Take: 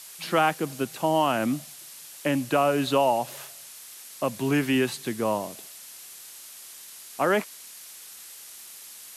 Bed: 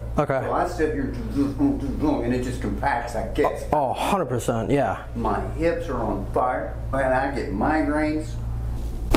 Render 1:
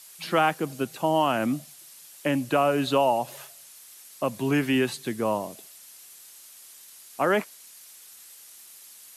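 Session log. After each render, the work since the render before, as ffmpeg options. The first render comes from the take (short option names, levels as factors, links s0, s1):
-af "afftdn=nr=6:nf=-45"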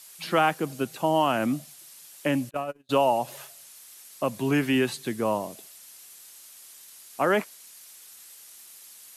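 -filter_complex "[0:a]asplit=3[s0][s1][s2];[s0]afade=t=out:st=2.49:d=0.02[s3];[s1]agate=range=0.00562:threshold=0.1:ratio=16:release=100:detection=peak,afade=t=in:st=2.49:d=0.02,afade=t=out:st=2.89:d=0.02[s4];[s2]afade=t=in:st=2.89:d=0.02[s5];[s3][s4][s5]amix=inputs=3:normalize=0"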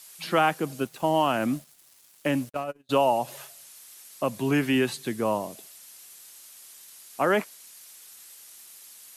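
-filter_complex "[0:a]asettb=1/sr,asplit=3[s0][s1][s2];[s0]atrim=end=0.804[s3];[s1]atrim=start=0.8:end=2.64,asetpts=PTS-STARTPTS,afade=t=in:d=0.004:c=qsin,afade=t=out:st=1.836:d=0.004:c=qsin,aeval=exprs='sgn(val(0))*max(abs(val(0))-0.00398,0)':c=same[s4];[s2]atrim=start=2.636[s5];[s3][s4]acrossfade=d=0.004:c1=hsin:c2=qsin[s6];[s6][s5]acrossfade=d=0.004:c1=qsin:c2=hsin"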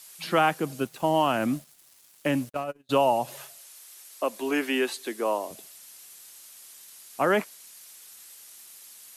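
-filter_complex "[0:a]asettb=1/sr,asplit=3[s0][s1][s2];[s0]atrim=end=3.584[s3];[s1]atrim=start=3.58:end=5.51,asetpts=PTS-STARTPTS,afade=t=in:d=0.004:c=qsin,afade=t=out:st=1.926:d=0.004:c=qsin,highpass=f=300:w=0.5412,highpass=f=300:w=1.3066[s4];[s2]atrim=start=5.506[s5];[s3][s4]acrossfade=d=0.004:c1=hsin:c2=qsin[s6];[s6][s5]acrossfade=d=0.004:c1=qsin:c2=hsin"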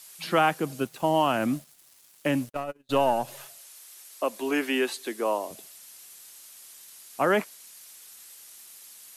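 -filter_complex "[0:a]asettb=1/sr,asplit=3[s0][s1][s2];[s0]atrim=end=2.464[s3];[s1]atrim=start=2.46:end=3.46,asetpts=PTS-STARTPTS,afade=t=in:d=0.004:c=qsin,afade=t=out:st=0.996:d=0.004:c=qsin,aeval=exprs='if(lt(val(0),0),0.708*val(0),val(0))':c=same[s4];[s2]atrim=start=3.456[s5];[s3][s4]acrossfade=d=0.004:c1=hsin:c2=qsin[s6];[s6][s5]acrossfade=d=0.004:c1=qsin:c2=hsin"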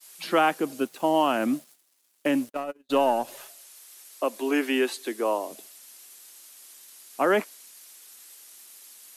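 -af "agate=range=0.0224:threshold=0.00447:ratio=3:detection=peak,lowshelf=f=180:t=q:w=1.5:g=-12"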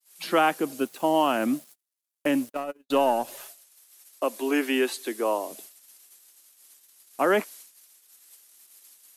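-af "agate=range=0.0794:threshold=0.00447:ratio=16:detection=peak,highshelf=f=10000:g=5"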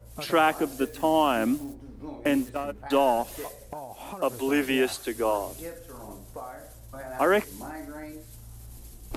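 -filter_complex "[1:a]volume=0.133[s0];[0:a][s0]amix=inputs=2:normalize=0"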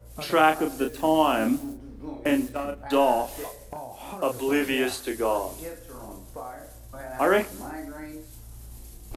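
-filter_complex "[0:a]asplit=2[s0][s1];[s1]adelay=32,volume=0.531[s2];[s0][s2]amix=inputs=2:normalize=0,asplit=2[s3][s4];[s4]adelay=125,lowpass=f=2000:p=1,volume=0.0631,asplit=2[s5][s6];[s6]adelay=125,lowpass=f=2000:p=1,volume=0.53,asplit=2[s7][s8];[s8]adelay=125,lowpass=f=2000:p=1,volume=0.53[s9];[s3][s5][s7][s9]amix=inputs=4:normalize=0"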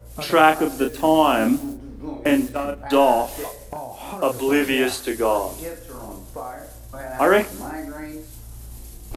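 -af "volume=1.78,alimiter=limit=0.708:level=0:latency=1"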